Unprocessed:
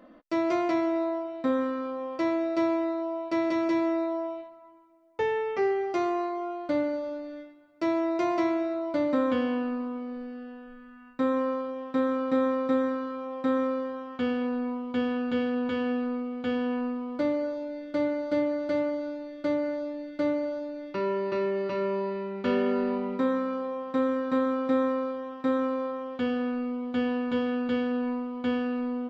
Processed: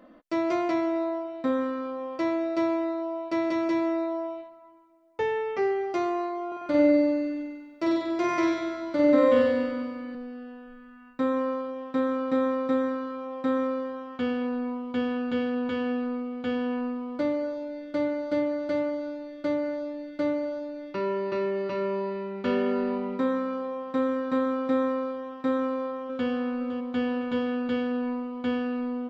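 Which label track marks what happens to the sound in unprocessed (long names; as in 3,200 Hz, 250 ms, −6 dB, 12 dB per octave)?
6.470000	10.150000	flutter between parallel walls apart 8.2 metres, dies away in 1.4 s
25.580000	26.290000	delay throw 510 ms, feedback 50%, level −11 dB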